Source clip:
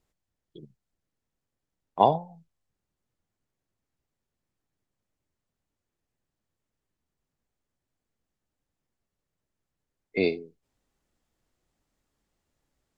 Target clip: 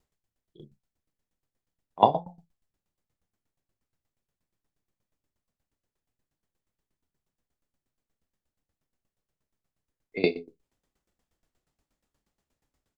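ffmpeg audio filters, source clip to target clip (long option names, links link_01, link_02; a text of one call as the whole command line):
ffmpeg -i in.wav -af "aecho=1:1:28|63:0.447|0.224,aeval=exprs='val(0)*pow(10,-18*if(lt(mod(8.4*n/s,1),2*abs(8.4)/1000),1-mod(8.4*n/s,1)/(2*abs(8.4)/1000),(mod(8.4*n/s,1)-2*abs(8.4)/1000)/(1-2*abs(8.4)/1000))/20)':channel_layout=same,volume=4dB" out.wav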